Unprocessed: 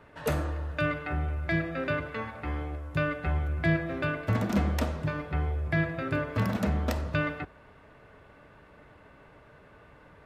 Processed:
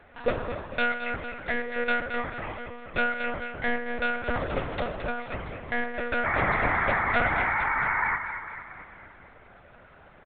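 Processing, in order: low shelf 170 Hz -11.5 dB; comb 2 ms, depth 89%; de-hum 73.72 Hz, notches 7; dynamic EQ 600 Hz, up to +3 dB, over -39 dBFS, Q 1.1; painted sound noise, 6.24–8.17, 710–2300 Hz -27 dBFS; on a send: thinning echo 0.225 s, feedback 57%, high-pass 280 Hz, level -8.5 dB; on the sum: monotone LPC vocoder at 8 kHz 240 Hz

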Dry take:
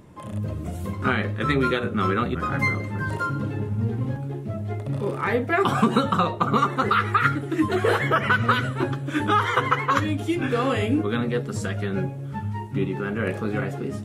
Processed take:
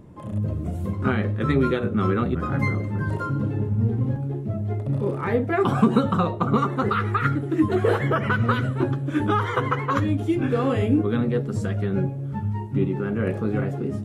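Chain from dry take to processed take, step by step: tilt shelf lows +5.5 dB, about 870 Hz; gain -2 dB

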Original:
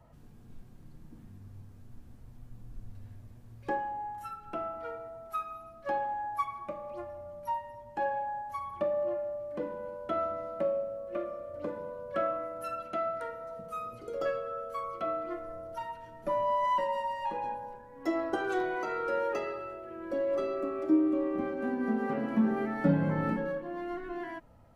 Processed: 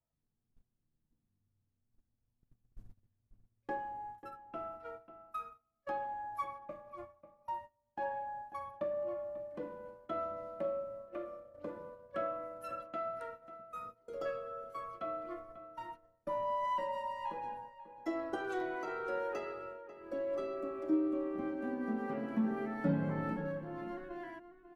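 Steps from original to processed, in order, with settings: gate -40 dBFS, range -26 dB; outdoor echo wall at 93 m, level -12 dB; gain -6.5 dB

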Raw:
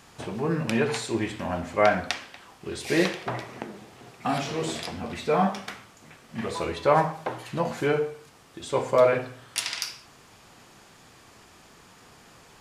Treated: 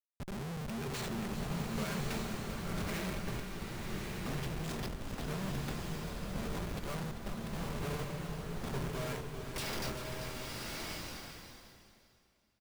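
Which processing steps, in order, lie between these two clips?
passive tone stack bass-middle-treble 6-0-2; comb 5 ms, depth 86%; in parallel at +0.5 dB: level quantiser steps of 12 dB; on the sum: resonator 130 Hz, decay 0.45 s, harmonics odd, mix 70%; Schmitt trigger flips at -51.5 dBFS; echo 0.392 s -10.5 dB; bloom reverb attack 1.19 s, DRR -0.5 dB; gain +13.5 dB

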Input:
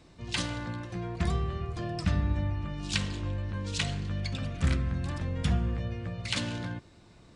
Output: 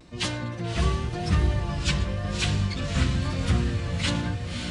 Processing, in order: diffused feedback echo 0.918 s, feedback 54%, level -5.5 dB; vibrato 0.6 Hz 39 cents; plain phase-vocoder stretch 0.64×; gain +8 dB

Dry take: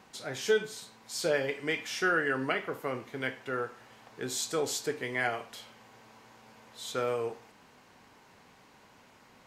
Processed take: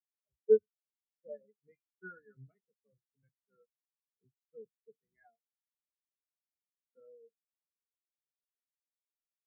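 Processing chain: octaver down 1 oct, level +3 dB; spectral expander 4:1

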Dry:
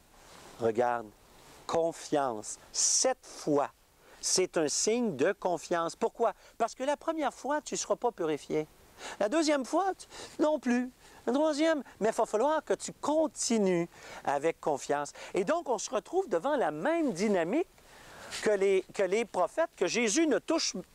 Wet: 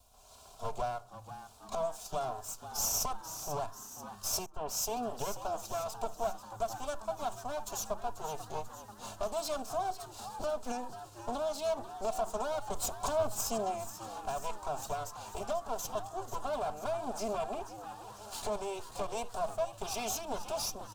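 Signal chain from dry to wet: minimum comb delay 2.9 ms; bell 1100 Hz -2.5 dB; in parallel at -1 dB: limiter -28 dBFS, peak gain reduction 10.5 dB; 0.98–1.72 on the sum: compressor 3:1, threshold -48 dBFS, peak gain reduction 12.5 dB; 12.75–13.41 sample leveller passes 2; fixed phaser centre 790 Hz, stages 4; frequency-shifting echo 0.489 s, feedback 60%, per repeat +100 Hz, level -12 dB; on a send at -15.5 dB: reverb RT60 0.45 s, pre-delay 5 ms; 4.46–4.97 on the sum: three-band expander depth 100%; gain -5 dB

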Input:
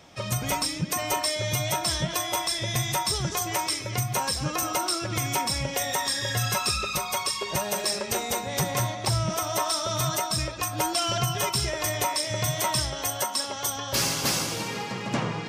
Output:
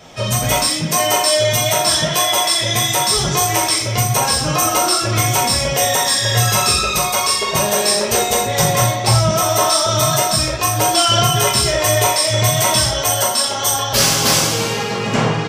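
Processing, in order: 0.64–3.17 HPF 190 Hz 6 dB/oct; speakerphone echo 0.35 s, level -20 dB; reverb, pre-delay 3 ms, DRR -3.5 dB; gain +6.5 dB

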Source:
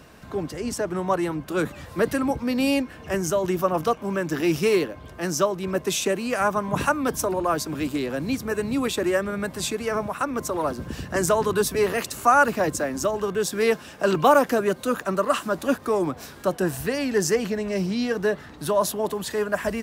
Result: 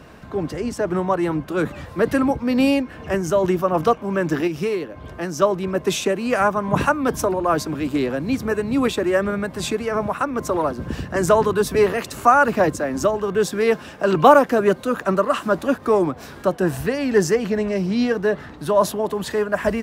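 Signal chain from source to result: high shelf 4000 Hz -9.5 dB; 4.47–5.42 compressor 6:1, threshold -26 dBFS, peak gain reduction 9.5 dB; tremolo triangle 2.4 Hz, depth 40%; gain +6.5 dB

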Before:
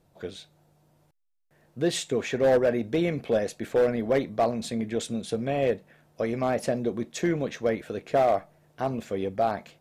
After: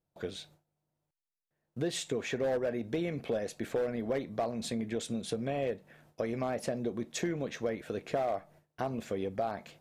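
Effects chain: gate with hold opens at -49 dBFS; compressor 3:1, threshold -32 dBFS, peak gain reduction 10.5 dB

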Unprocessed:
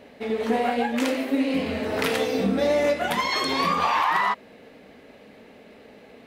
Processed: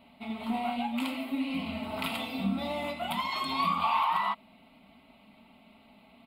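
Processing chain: fixed phaser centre 1700 Hz, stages 6; comb 4.5 ms, depth 40%; gain -5 dB

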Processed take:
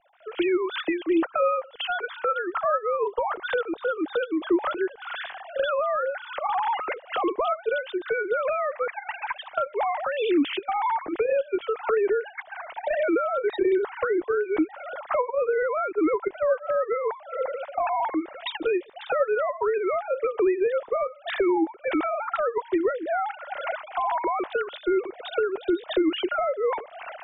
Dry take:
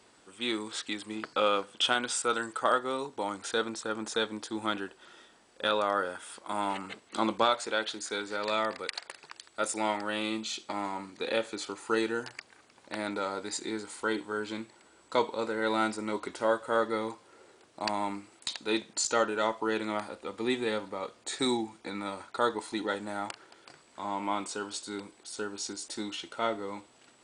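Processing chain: sine-wave speech; recorder AGC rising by 63 dB/s; tilt -3 dB/oct

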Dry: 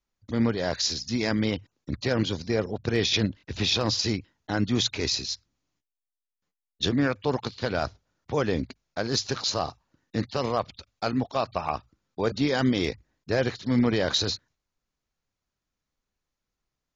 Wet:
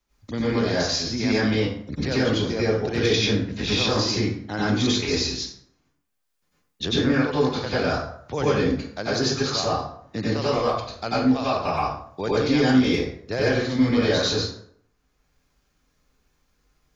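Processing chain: plate-style reverb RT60 0.56 s, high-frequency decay 0.65×, pre-delay 80 ms, DRR -9.5 dB; three-band squash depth 40%; gain -5.5 dB

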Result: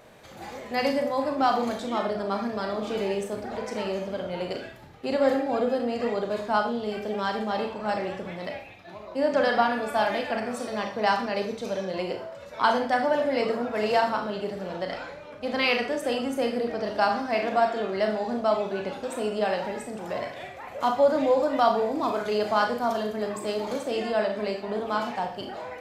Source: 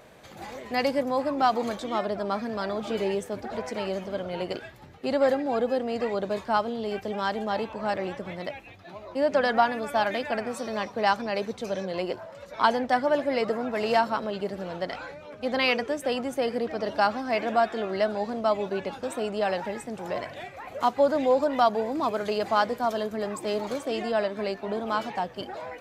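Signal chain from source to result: Schroeder reverb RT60 0.45 s, combs from 26 ms, DRR 3.5 dB; gain -1 dB

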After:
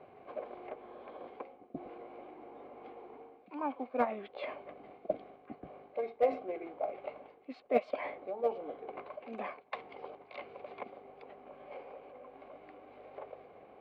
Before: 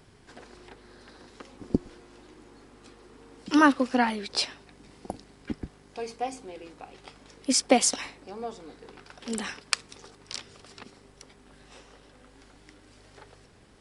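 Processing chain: reverse; compressor 4:1, threshold -39 dBFS, peak gain reduction 21.5 dB; reverse; vowel filter a; short-mantissa float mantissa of 4-bit; formant shift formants -3 st; air absorption 440 m; gain +17.5 dB

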